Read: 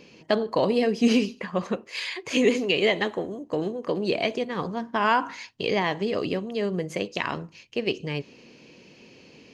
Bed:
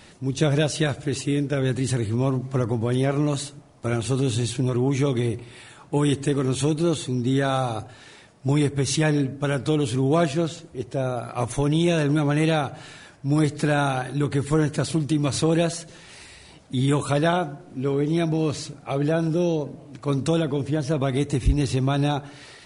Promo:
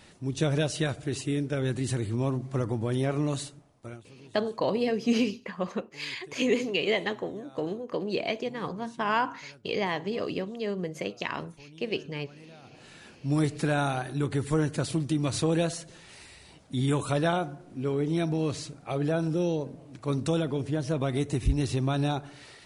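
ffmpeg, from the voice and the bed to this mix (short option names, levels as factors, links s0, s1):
-filter_complex "[0:a]adelay=4050,volume=0.596[s0];[1:a]volume=8.91,afade=t=out:st=3.42:d=0.62:silence=0.0630957,afade=t=in:st=12.62:d=0.48:silence=0.0595662[s1];[s0][s1]amix=inputs=2:normalize=0"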